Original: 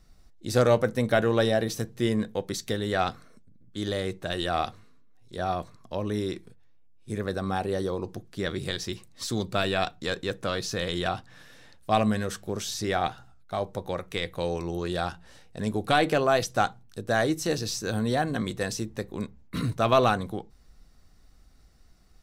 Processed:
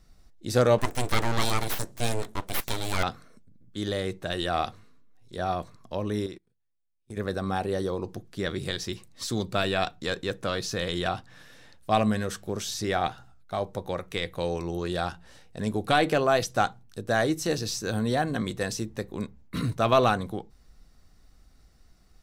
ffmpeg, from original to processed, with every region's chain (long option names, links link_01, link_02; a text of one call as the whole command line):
ffmpeg -i in.wav -filter_complex "[0:a]asettb=1/sr,asplit=3[link_01][link_02][link_03];[link_01]atrim=end=0.784[link_04];[link_02]atrim=start=0.78:end=3.03,asetpts=PTS-STARTPTS,afade=type=in:duration=0.004:curve=qsin,afade=type=out:start_time=2.246:duration=0.004:curve=qsin,equalizer=frequency=8400:width_type=o:width=1.3:gain=13.5,aeval=exprs='abs(val(0))':channel_layout=same[link_05];[link_03]atrim=start=3.026[link_06];[link_04][link_05]acrossfade=duration=0.004:curve1=hsin:curve2=qsin[link_07];[link_07][link_06]acrossfade=duration=0.004:curve1=qsin:curve2=hsin,asettb=1/sr,asplit=3[link_08][link_09][link_10];[link_08]atrim=end=6.264[link_11];[link_09]atrim=start=6.26:end=7.17,asetpts=PTS-STARTPTS,afade=type=in:duration=0.004:curve=qsin,afade=type=out:start_time=0.906:duration=0.004:curve=qsin,agate=range=-23dB:threshold=-38dB:ratio=16:release=100:detection=peak,acompressor=threshold=-41dB:ratio=2:attack=3.2:release=140:knee=1:detection=peak[link_12];[link_10]atrim=start=7.166[link_13];[link_11][link_12]acrossfade=duration=0.004:curve1=hsin:curve2=qsin[link_14];[link_14][link_13]acrossfade=duration=0.004:curve1=qsin:curve2=hsin" out.wav